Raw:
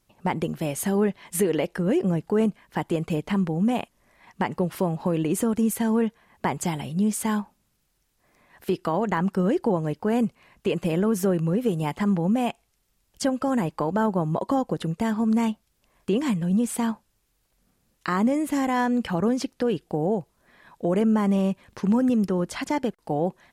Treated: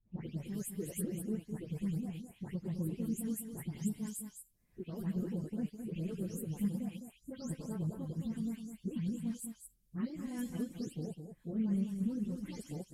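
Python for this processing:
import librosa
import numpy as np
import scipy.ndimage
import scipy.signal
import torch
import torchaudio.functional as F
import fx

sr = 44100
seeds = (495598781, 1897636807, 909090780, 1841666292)

y = fx.spec_delay(x, sr, highs='late', ms=432)
y = fx.tone_stack(y, sr, knobs='10-0-1')
y = fx.stretch_vocoder_free(y, sr, factor=0.55)
y = fx.high_shelf(y, sr, hz=6300.0, db=9.0)
y = y + 10.0 ** (-7.5 / 20.0) * np.pad(y, (int(209 * sr / 1000.0), 0))[:len(y)]
y = y * librosa.db_to_amplitude(7.0)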